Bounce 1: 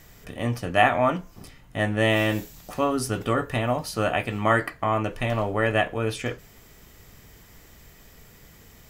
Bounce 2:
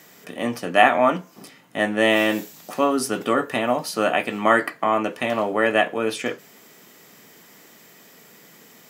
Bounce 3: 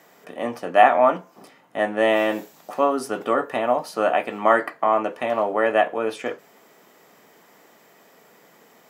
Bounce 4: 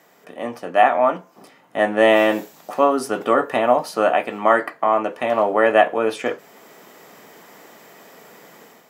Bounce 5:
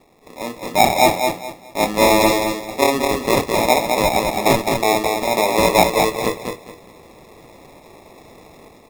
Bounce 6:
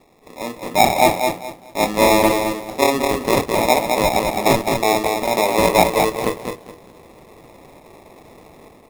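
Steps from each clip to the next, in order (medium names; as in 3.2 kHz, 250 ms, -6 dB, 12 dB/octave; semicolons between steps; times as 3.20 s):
high-pass 190 Hz 24 dB/octave; trim +4 dB
peaking EQ 750 Hz +12 dB 2.5 oct; trim -9.5 dB
level rider gain up to 9 dB; trim -1 dB
sample-and-hold 29×; on a send: feedback delay 211 ms, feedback 26%, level -4.5 dB
median filter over 25 samples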